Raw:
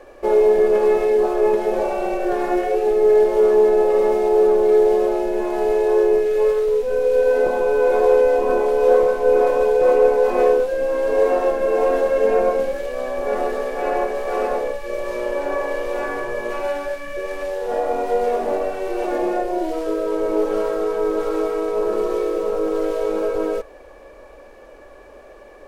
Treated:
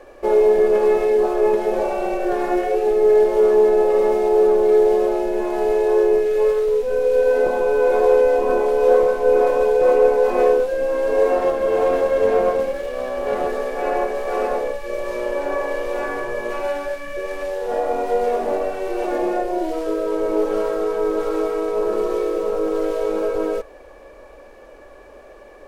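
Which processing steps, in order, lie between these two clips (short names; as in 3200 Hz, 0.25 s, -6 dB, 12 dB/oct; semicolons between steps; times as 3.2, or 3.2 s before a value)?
11.38–13.47 running maximum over 5 samples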